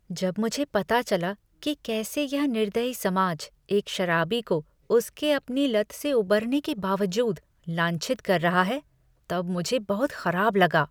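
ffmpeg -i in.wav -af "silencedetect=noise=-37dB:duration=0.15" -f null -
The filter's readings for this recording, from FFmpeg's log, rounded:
silence_start: 1.34
silence_end: 1.63 | silence_duration: 0.29
silence_start: 3.46
silence_end: 3.69 | silence_duration: 0.23
silence_start: 4.61
silence_end: 4.90 | silence_duration: 0.29
silence_start: 7.38
silence_end: 7.68 | silence_duration: 0.30
silence_start: 8.79
silence_end: 9.30 | silence_duration: 0.50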